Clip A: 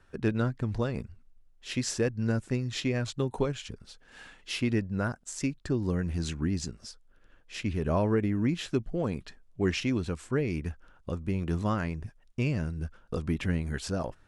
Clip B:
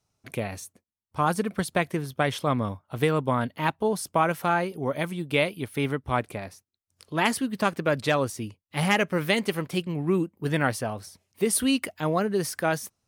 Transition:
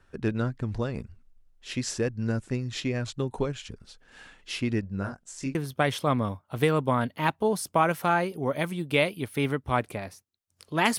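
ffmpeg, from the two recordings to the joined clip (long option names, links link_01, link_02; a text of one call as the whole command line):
ffmpeg -i cue0.wav -i cue1.wav -filter_complex "[0:a]asettb=1/sr,asplit=3[link_01][link_02][link_03];[link_01]atrim=end=4.814[link_04];[link_02]atrim=start=4.81:end=5.55,asetpts=PTS-STARTPTS,afade=type=in:duration=0.004:curve=qsin,afade=type=out:start_time=0.736:duration=0.004:curve=qsin,flanger=delay=20:depth=3.3:speed=0.58[link_05];[link_03]atrim=start=5.546[link_06];[link_04][link_05]acrossfade=duration=0.004:curve1=hsin:curve2=qsin[link_07];[link_07][link_06]acrossfade=duration=0.004:curve1=qsin:curve2=hsin,apad=whole_dur=10.98,atrim=end=10.98,atrim=end=5.552[link_08];[1:a]atrim=start=1.948:end=7.38[link_09];[link_08][link_09]acrossfade=duration=0.004:curve1=hsin:curve2=hsin" out.wav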